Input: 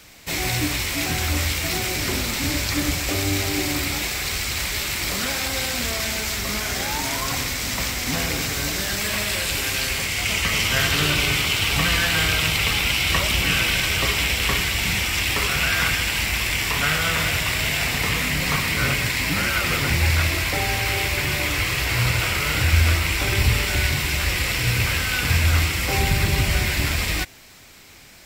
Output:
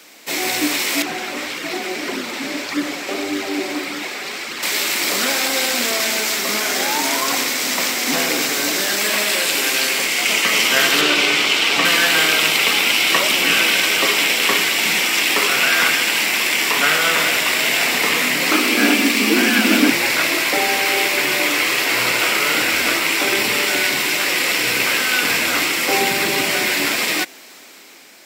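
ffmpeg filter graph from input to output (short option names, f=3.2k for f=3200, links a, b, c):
-filter_complex "[0:a]asettb=1/sr,asplit=3[a][b][c];[a]atrim=end=1.024[d];[b]atrim=start=1.02:end=4.63,asetpts=PTS-STARTPTS,afade=t=in:d=0.004:c=qsin,afade=t=out:st=3.606:d=0.004:c=qsin,lowpass=f=2.7k:p=1,flanger=delay=0.6:depth=4.6:regen=-28:speed=1.7:shape=sinusoidal[e];[c]atrim=start=4.626[f];[d][e]acrossfade=d=0.004:c1=hsin:c2=qsin[g];[g][f]acrossfade=d=0.004:c1=qsin:c2=hsin,asettb=1/sr,asplit=3[h][i][j];[h]atrim=end=11.014[k];[i]atrim=start=11.01:end=11.85,asetpts=PTS-STARTPTS,afade=t=in:d=0.004:c=qsin,afade=t=out:st=0.836:d=0.004:c=qsin,bandreject=f=50:t=h:w=6,bandreject=f=100:t=h:w=6,bandreject=f=150:t=h:w=6,bandreject=f=200:t=h:w=6,bandreject=f=250:t=h:w=6,acrossover=split=7500[l][m];[m]acompressor=threshold=-42dB:ratio=4:attack=1:release=60[n];[l][n]amix=inputs=2:normalize=0[o];[j]atrim=start=11.846[p];[k][o]acrossfade=d=0.004:c1=hsin:c2=qsin[q];[q][p]acrossfade=d=0.004:c1=qsin:c2=hsin,asettb=1/sr,asplit=3[r][s][t];[r]atrim=end=18.514[u];[s]atrim=start=18.51:end=19.9,asetpts=PTS-STARTPTS,afade=t=in:d=0.004:c=qsin,afade=t=out:st=1.386:d=0.004:c=qsin,asubboost=boost=6.5:cutoff=160,afreqshift=160[v];[t]atrim=start=19.896[w];[u][v]acrossfade=d=0.004:c1=hsin:c2=qsin[x];[x][w]acrossfade=d=0.004:c1=qsin:c2=hsin,highpass=f=260:w=0.5412,highpass=f=260:w=1.3066,lowshelf=f=470:g=3.5,dynaudnorm=f=190:g=7:m=3dB,volume=3dB"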